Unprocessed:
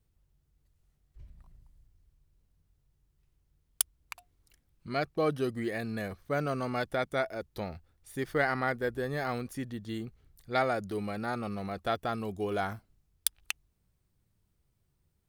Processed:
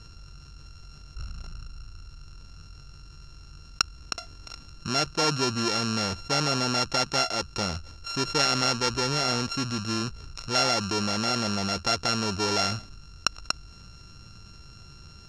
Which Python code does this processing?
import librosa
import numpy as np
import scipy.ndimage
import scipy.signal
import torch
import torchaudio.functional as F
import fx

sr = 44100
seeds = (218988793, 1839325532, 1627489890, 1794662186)

y = np.r_[np.sort(x[:len(x) // 32 * 32].reshape(-1, 32), axis=1).ravel(), x[len(x) // 32 * 32:]]
y = fx.lowpass_res(y, sr, hz=5600.0, q=5.0)
y = fx.env_flatten(y, sr, amount_pct=50)